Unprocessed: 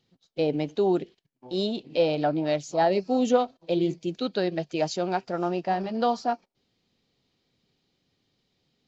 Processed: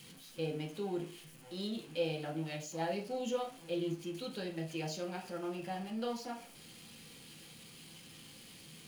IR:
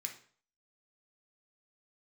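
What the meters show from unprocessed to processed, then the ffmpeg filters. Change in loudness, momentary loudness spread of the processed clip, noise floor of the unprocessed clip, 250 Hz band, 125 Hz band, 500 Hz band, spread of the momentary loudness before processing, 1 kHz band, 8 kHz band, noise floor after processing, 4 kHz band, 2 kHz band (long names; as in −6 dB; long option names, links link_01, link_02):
−13.0 dB, 15 LU, −75 dBFS, −12.0 dB, −8.0 dB, −13.5 dB, 6 LU, −15.5 dB, can't be measured, −55 dBFS, −8.0 dB, −9.0 dB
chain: -filter_complex "[0:a]aeval=exprs='val(0)+0.5*0.0133*sgn(val(0))':channel_layout=same[link_01];[1:a]atrim=start_sample=2205,asetrate=57330,aresample=44100[link_02];[link_01][link_02]afir=irnorm=-1:irlink=0,volume=-6dB"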